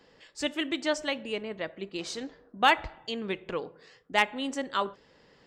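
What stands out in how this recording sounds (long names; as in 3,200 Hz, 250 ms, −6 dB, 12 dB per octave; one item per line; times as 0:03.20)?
background noise floor −61 dBFS
spectral slope −3.0 dB per octave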